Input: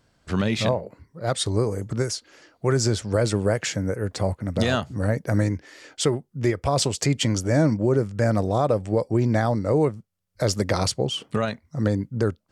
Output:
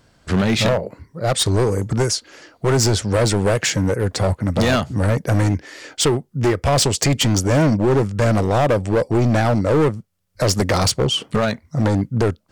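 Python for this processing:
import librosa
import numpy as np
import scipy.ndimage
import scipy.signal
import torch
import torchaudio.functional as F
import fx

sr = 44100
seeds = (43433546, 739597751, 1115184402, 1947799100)

y = np.clip(x, -10.0 ** (-21.0 / 20.0), 10.0 ** (-21.0 / 20.0))
y = y * librosa.db_to_amplitude(8.5)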